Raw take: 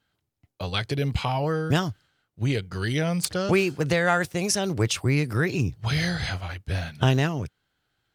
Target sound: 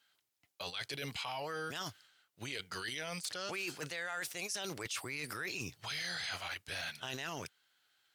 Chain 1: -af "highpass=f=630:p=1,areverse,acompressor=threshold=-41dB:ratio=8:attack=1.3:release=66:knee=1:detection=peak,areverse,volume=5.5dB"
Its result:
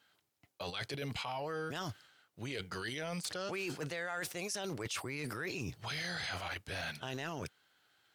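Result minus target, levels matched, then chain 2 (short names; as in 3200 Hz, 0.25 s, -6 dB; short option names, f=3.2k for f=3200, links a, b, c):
500 Hz band +3.5 dB
-af "highpass=f=2.3k:p=1,areverse,acompressor=threshold=-41dB:ratio=8:attack=1.3:release=66:knee=1:detection=peak,areverse,volume=5.5dB"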